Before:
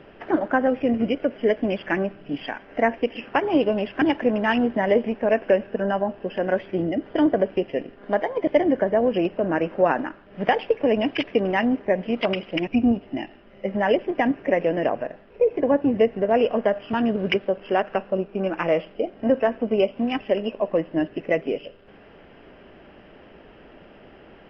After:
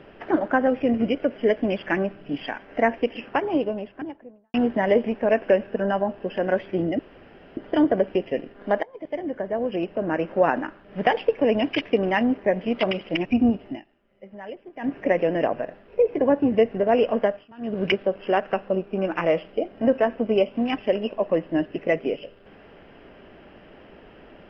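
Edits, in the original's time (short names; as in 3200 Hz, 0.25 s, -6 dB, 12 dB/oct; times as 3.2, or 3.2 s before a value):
2.98–4.54 studio fade out
6.99 insert room tone 0.58 s
8.25–9.93 fade in, from -19.5 dB
13.09–14.36 dip -17 dB, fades 0.15 s
16.66–17.23 dip -23.5 dB, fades 0.24 s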